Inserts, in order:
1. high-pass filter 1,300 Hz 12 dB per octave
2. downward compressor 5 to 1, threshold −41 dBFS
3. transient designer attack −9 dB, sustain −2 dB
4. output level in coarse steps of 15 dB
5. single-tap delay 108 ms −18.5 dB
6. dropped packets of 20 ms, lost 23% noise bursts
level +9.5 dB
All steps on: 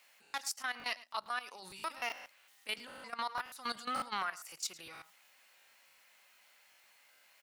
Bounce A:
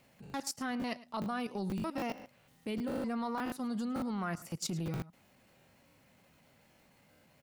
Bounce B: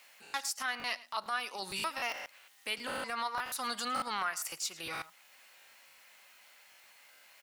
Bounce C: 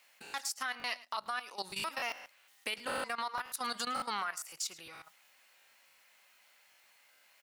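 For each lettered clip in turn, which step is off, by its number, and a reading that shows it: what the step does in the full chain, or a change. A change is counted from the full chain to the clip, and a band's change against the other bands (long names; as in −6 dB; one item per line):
1, 125 Hz band +25.5 dB
4, change in crest factor −2.0 dB
3, change in momentary loudness spread −3 LU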